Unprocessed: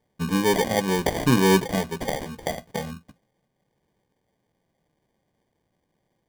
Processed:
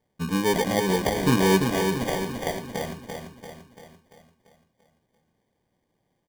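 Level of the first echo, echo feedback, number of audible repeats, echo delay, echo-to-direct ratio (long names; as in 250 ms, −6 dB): −5.5 dB, 52%, 6, 341 ms, −4.0 dB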